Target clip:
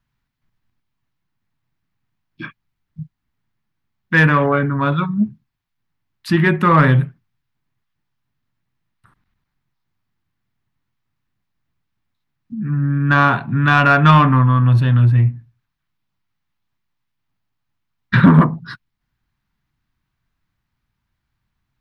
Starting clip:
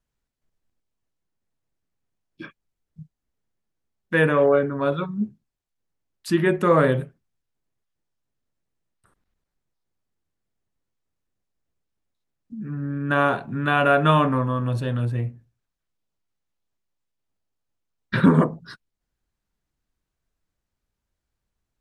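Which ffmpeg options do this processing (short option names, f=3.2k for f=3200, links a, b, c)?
-af "equalizer=f=125:t=o:w=1:g=9,equalizer=f=250:t=o:w=1:g=3,equalizer=f=500:t=o:w=1:g=-10,equalizer=f=1k:t=o:w=1:g=6,equalizer=f=2k:t=o:w=1:g=5,equalizer=f=4k:t=o:w=1:g=3,equalizer=f=8k:t=o:w=1:g=-9,acontrast=33,volume=-1dB"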